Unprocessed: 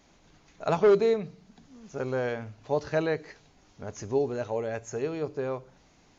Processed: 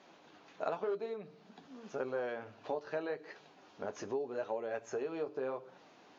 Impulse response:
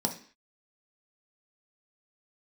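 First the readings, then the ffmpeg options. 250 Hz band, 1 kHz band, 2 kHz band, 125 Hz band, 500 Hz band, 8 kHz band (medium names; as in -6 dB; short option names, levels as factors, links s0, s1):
-11.5 dB, -8.0 dB, -8.5 dB, -19.5 dB, -10.5 dB, no reading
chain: -af "equalizer=f=2100:t=o:w=0.28:g=-6,acompressor=threshold=0.0141:ratio=12,flanger=delay=5.3:depth=6.1:regen=-47:speed=0.88:shape=sinusoidal,highpass=320,lowpass=3400,volume=2.66"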